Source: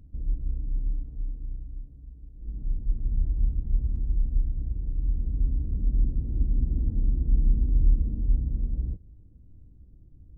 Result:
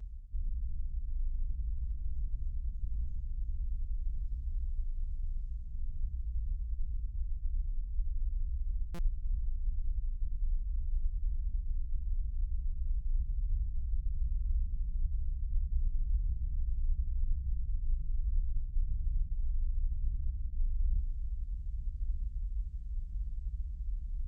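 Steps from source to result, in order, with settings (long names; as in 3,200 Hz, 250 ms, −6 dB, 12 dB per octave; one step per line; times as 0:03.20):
high-pass filter 55 Hz 24 dB per octave
parametric band 150 Hz +14 dB 1.7 octaves
notch filter 460 Hz, Q 12
comb filter 2 ms, depth 82%
reversed playback
downward compressor 6 to 1, threshold −38 dBFS, peak gain reduction 22 dB
reversed playback
feedback delay with all-pass diffusion 551 ms, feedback 57%, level −11 dB
convolution reverb, pre-delay 145 ms, DRR 11 dB
wrong playback speed 78 rpm record played at 33 rpm
buffer that repeats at 0:08.94, samples 256, times 7
level +6.5 dB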